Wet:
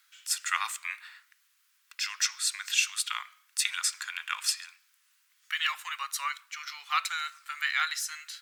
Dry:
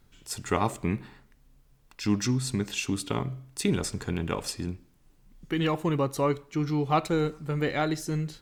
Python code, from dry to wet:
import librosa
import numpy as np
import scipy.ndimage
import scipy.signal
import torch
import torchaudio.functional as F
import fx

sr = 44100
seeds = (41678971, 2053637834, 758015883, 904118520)

y = scipy.signal.sosfilt(scipy.signal.butter(6, 1300.0, 'highpass', fs=sr, output='sos'), x)
y = F.gain(torch.from_numpy(y), 6.5).numpy()